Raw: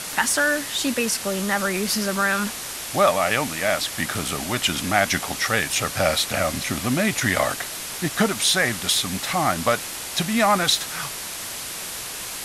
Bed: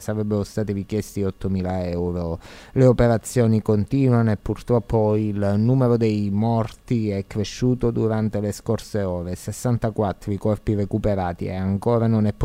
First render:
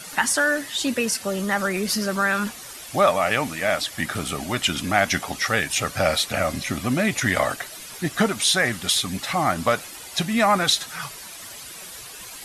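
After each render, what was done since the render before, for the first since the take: denoiser 11 dB, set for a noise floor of -33 dBFS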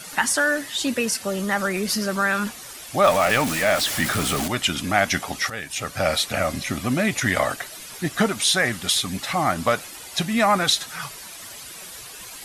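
3.04–4.48 zero-crossing step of -23 dBFS; 5.5–6.16 fade in, from -12.5 dB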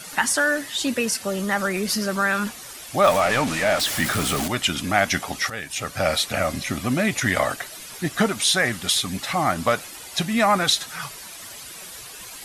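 3.2–3.8 CVSD 64 kbps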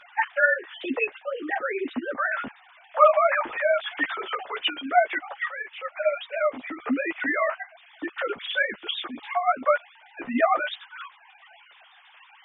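sine-wave speech; chorus voices 4, 0.49 Hz, delay 12 ms, depth 5 ms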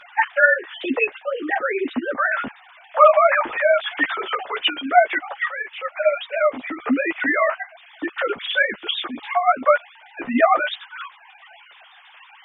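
gain +5.5 dB; limiter -1 dBFS, peak gain reduction 2 dB

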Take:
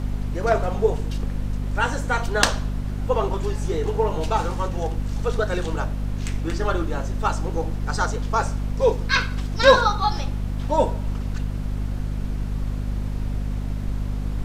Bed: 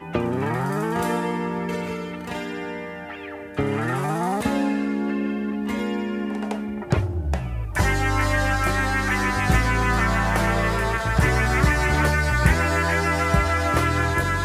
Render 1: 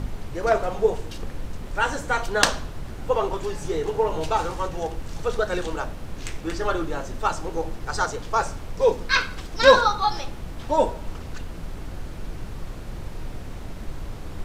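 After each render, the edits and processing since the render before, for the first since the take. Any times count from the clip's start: de-hum 50 Hz, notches 5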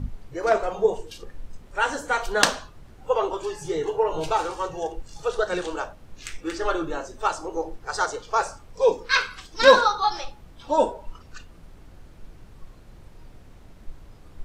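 noise print and reduce 13 dB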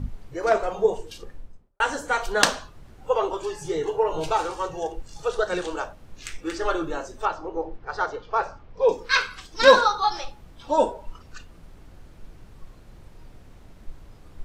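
1.2–1.8 studio fade out; 7.25–8.89 air absorption 250 m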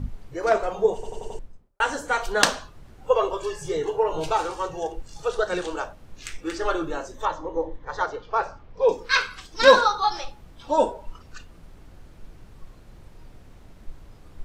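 0.94 stutter in place 0.09 s, 5 plays; 3.1–3.77 comb 1.8 ms, depth 51%; 7.14–8.03 ripple EQ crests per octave 1.1, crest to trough 10 dB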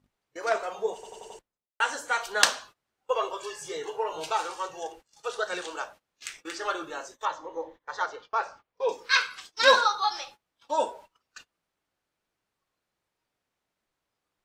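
HPF 1200 Hz 6 dB/oct; gate -47 dBFS, range -22 dB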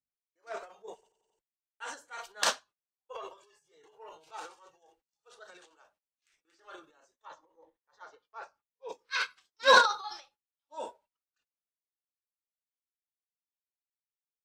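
transient shaper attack -5 dB, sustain +9 dB; upward expander 2.5:1, over -40 dBFS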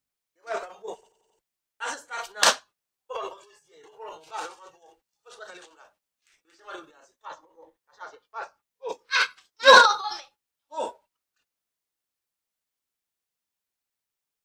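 gain +9 dB; limiter -2 dBFS, peak gain reduction 3 dB

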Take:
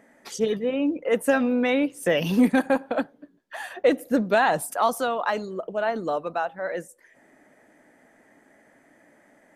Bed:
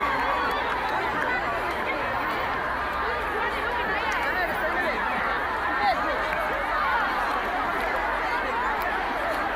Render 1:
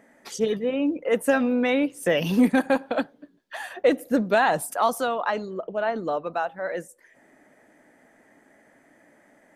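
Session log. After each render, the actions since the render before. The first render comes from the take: 2.68–3.58 bell 3900 Hz +5.5 dB 1.3 oct; 5.16–6.33 air absorption 76 m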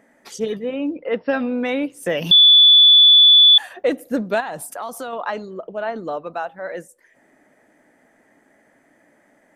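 0.92–1.55 brick-wall FIR low-pass 5600 Hz; 2.31–3.58 bleep 3460 Hz -6.5 dBFS; 4.4–5.13 compressor 3:1, threshold -27 dBFS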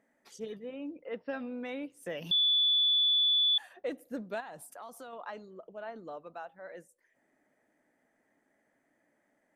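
gain -16.5 dB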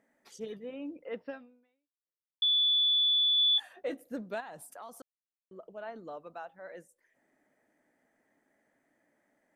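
1.26–2.42 fade out exponential; 3.36–4.02 doubler 18 ms -8 dB; 5.02–5.51 mute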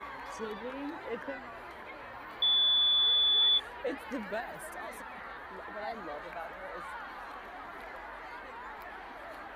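add bed -18.5 dB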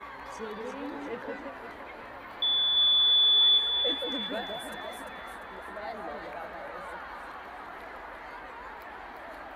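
echo with dull and thin repeats by turns 0.173 s, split 980 Hz, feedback 66%, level -2.5 dB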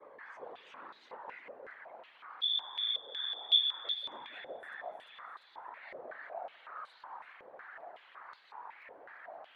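whisperiser; stepped band-pass 5.4 Hz 510–4100 Hz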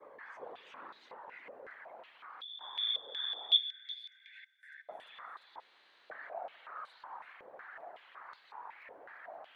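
0.99–2.61 compressor, threshold -45 dBFS; 3.57–4.89 rippled Chebyshev high-pass 1500 Hz, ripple 9 dB; 5.6–6.1 room tone

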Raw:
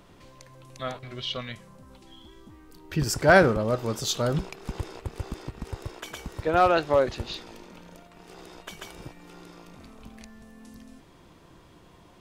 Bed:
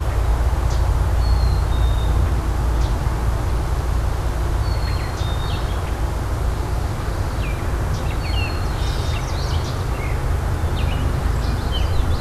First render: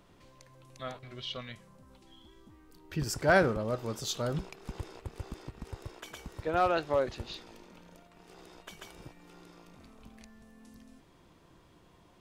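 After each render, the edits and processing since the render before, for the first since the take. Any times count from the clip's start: gain -7 dB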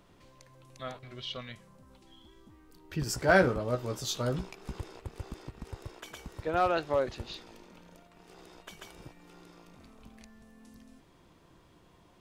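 3.07–4.79 doubler 16 ms -6 dB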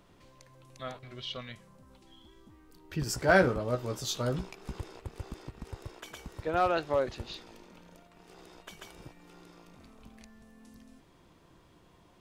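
nothing audible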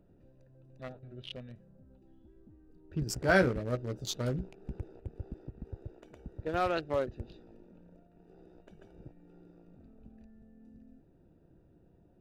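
Wiener smoothing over 41 samples; dynamic EQ 860 Hz, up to -5 dB, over -42 dBFS, Q 1.1

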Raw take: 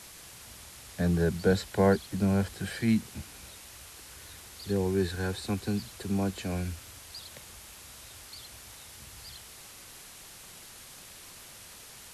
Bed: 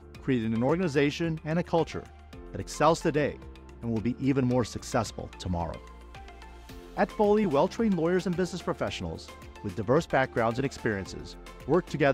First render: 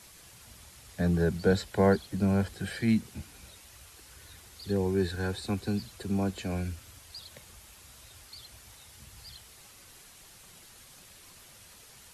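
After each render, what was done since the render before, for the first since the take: denoiser 6 dB, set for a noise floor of -49 dBFS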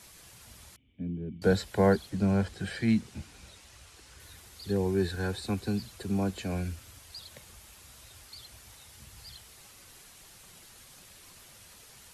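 0.76–1.42 vocal tract filter i; 2.1–4.2 LPF 8500 Hz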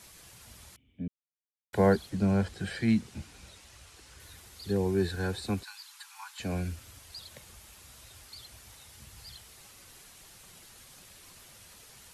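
1.08–1.73 mute; 5.63–6.4 Chebyshev high-pass 840 Hz, order 8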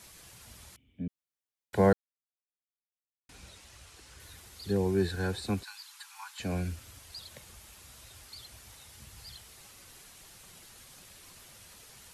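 1.93–3.29 mute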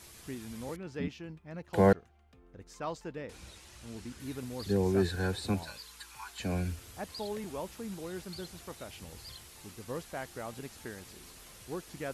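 add bed -15 dB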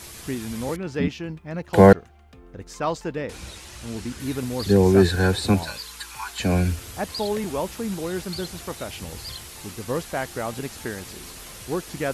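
gain +12 dB; limiter -1 dBFS, peak gain reduction 1 dB

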